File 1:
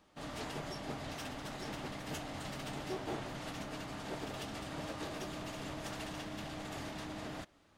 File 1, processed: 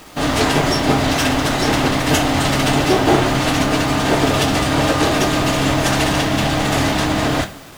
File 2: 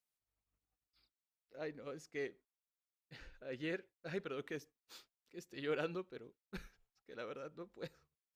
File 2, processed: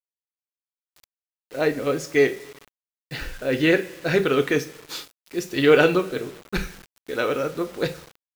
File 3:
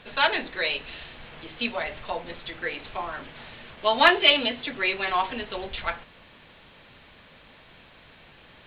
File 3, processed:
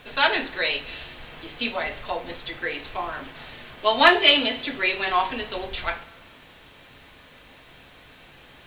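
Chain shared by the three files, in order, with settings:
coupled-rooms reverb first 0.29 s, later 1.6 s, from −18 dB, DRR 6.5 dB
bit reduction 11 bits
normalise the peak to −2 dBFS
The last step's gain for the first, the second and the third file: +25.5, +22.0, +1.5 decibels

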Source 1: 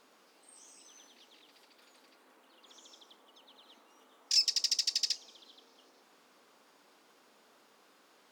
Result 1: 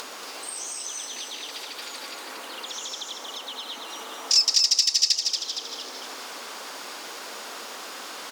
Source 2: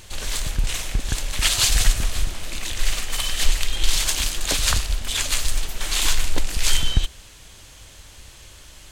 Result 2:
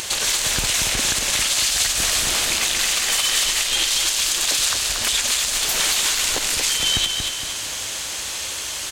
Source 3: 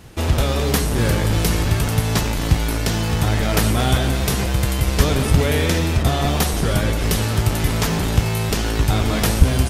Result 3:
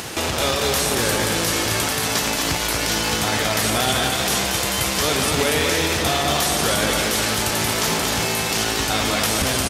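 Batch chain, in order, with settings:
high-pass filter 550 Hz 6 dB per octave
parametric band 6,300 Hz +3.5 dB 1.5 octaves
downward compressor 6 to 1, threshold −32 dBFS
brickwall limiter −26 dBFS
upward compression, threshold −47 dBFS
on a send: repeating echo 232 ms, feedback 44%, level −5 dB
on the sum: normalise the peak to −6 dBFS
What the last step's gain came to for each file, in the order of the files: +17.5, +16.0, +16.5 decibels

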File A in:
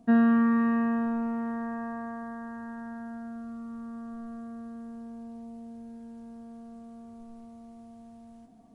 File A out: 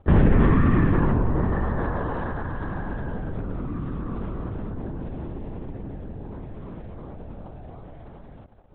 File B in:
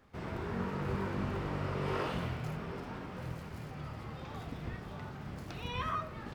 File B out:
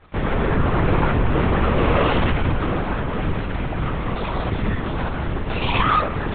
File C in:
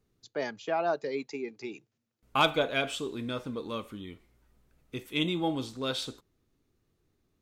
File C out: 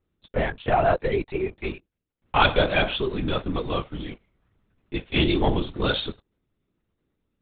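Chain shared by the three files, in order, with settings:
leveller curve on the samples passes 2
linear-prediction vocoder at 8 kHz whisper
normalise the peak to −6 dBFS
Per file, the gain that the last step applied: +2.5, +12.5, +2.0 decibels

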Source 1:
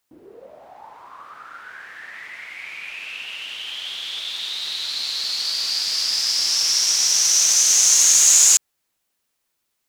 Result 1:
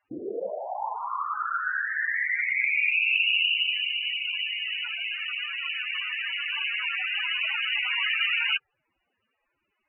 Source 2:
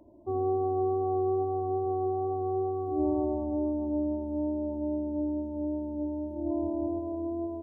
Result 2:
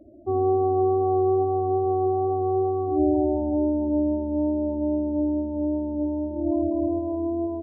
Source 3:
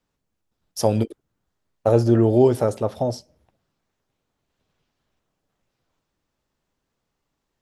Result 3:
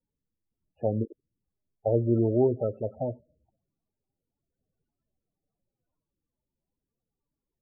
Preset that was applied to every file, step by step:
linear-phase brick-wall low-pass 3,000 Hz
spectral peaks only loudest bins 16
normalise the peak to −12 dBFS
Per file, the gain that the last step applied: +11.5, +6.5, −7.5 decibels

